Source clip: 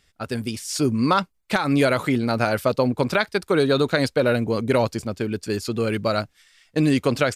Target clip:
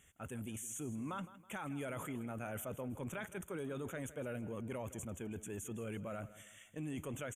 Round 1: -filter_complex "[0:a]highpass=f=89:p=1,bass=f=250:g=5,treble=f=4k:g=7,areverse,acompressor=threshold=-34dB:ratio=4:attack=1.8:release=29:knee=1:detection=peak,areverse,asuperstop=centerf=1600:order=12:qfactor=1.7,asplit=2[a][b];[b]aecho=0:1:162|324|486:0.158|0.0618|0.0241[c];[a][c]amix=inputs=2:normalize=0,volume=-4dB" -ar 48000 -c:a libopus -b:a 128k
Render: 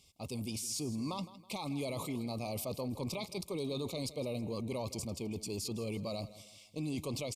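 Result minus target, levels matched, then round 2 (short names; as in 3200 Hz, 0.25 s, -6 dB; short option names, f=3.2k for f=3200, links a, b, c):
4000 Hz band +10.0 dB; compressor: peak gain reduction -5 dB
-filter_complex "[0:a]highpass=f=89:p=1,bass=f=250:g=5,treble=f=4k:g=7,areverse,acompressor=threshold=-40.5dB:ratio=4:attack=1.8:release=29:knee=1:detection=peak,areverse,asuperstop=centerf=4600:order=12:qfactor=1.7,asplit=2[a][b];[b]aecho=0:1:162|324|486:0.158|0.0618|0.0241[c];[a][c]amix=inputs=2:normalize=0,volume=-4dB" -ar 48000 -c:a libopus -b:a 128k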